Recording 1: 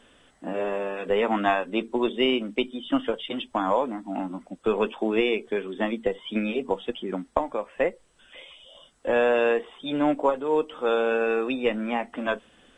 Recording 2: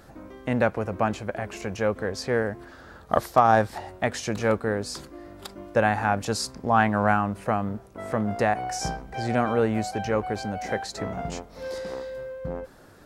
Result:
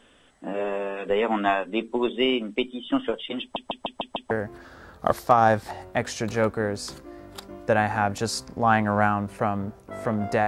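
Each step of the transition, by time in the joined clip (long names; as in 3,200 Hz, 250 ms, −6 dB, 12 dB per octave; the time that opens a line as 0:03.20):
recording 1
0:03.41: stutter in place 0.15 s, 6 plays
0:04.31: continue with recording 2 from 0:02.38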